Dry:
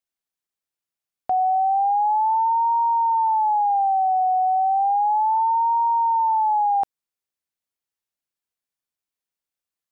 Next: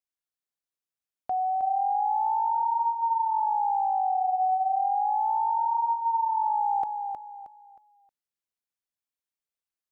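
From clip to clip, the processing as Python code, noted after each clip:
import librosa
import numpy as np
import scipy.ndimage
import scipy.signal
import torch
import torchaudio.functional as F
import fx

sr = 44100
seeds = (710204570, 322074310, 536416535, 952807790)

y = fx.echo_feedback(x, sr, ms=314, feedback_pct=32, wet_db=-6)
y = F.gain(torch.from_numpy(y), -7.0).numpy()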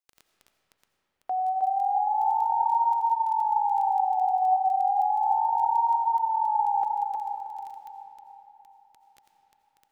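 y = scipy.signal.sosfilt(scipy.signal.butter(2, 390.0, 'highpass', fs=sr, output='sos'), x)
y = fx.dmg_crackle(y, sr, seeds[0], per_s=12.0, level_db=-35.0)
y = fx.rev_freeverb(y, sr, rt60_s=4.1, hf_ratio=0.5, predelay_ms=45, drr_db=5.0)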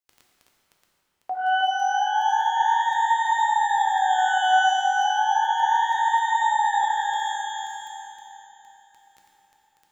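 y = fx.rev_shimmer(x, sr, seeds[1], rt60_s=1.4, semitones=12, shimmer_db=-8, drr_db=1.5)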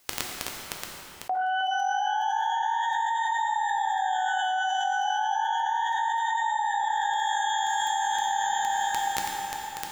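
y = fx.env_flatten(x, sr, amount_pct=100)
y = F.gain(torch.from_numpy(y), -11.5).numpy()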